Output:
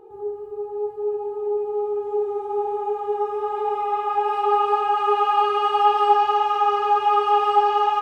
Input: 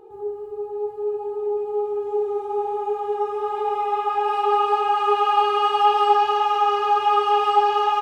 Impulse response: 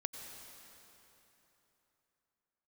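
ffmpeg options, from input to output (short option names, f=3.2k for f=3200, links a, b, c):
-filter_complex "[0:a]asplit=2[a][b];[1:a]atrim=start_sample=2205,asetrate=48510,aresample=44100,lowpass=2.6k[c];[b][c]afir=irnorm=-1:irlink=0,volume=-3.5dB[d];[a][d]amix=inputs=2:normalize=0,volume=-3.5dB"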